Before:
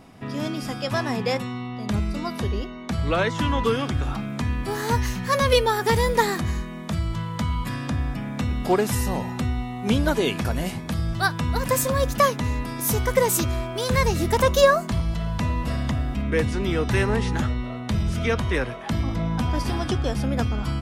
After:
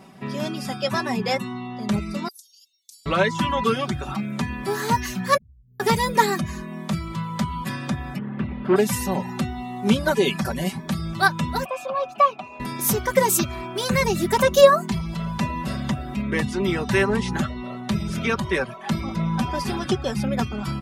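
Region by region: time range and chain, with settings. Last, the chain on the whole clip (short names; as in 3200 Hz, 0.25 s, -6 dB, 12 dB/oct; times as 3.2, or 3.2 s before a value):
2.28–3.06 inverse Chebyshev high-pass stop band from 1600 Hz, stop band 60 dB + high shelf 9700 Hz +7.5 dB + compressor 1.5:1, threshold -51 dBFS
5.37–5.8 inverse Chebyshev band-stop 820–8100 Hz, stop band 70 dB + passive tone stack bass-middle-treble 10-0-1 + compressor 2:1, threshold -45 dBFS
8.18–8.76 minimum comb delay 0.63 ms + air absorption 480 m
11.65–12.6 dynamic EQ 2700 Hz, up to +4 dB, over -32 dBFS, Q 0.73 + sample leveller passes 2 + vowel filter a
whole clip: HPF 90 Hz 12 dB/oct; reverb removal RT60 0.52 s; comb 5.2 ms; gain +1 dB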